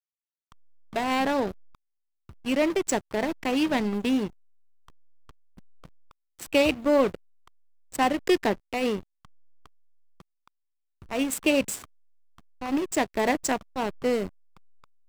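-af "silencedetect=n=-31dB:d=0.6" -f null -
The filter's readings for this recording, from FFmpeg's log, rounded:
silence_start: 0.00
silence_end: 0.96 | silence_duration: 0.96
silence_start: 1.52
silence_end: 2.46 | silence_duration: 0.94
silence_start: 4.27
silence_end: 6.42 | silence_duration: 2.14
silence_start: 7.15
silence_end: 7.94 | silence_duration: 0.79
silence_start: 8.99
silence_end: 11.11 | silence_duration: 2.12
silence_start: 11.82
silence_end: 12.62 | silence_duration: 0.80
silence_start: 14.27
silence_end: 15.09 | silence_duration: 0.82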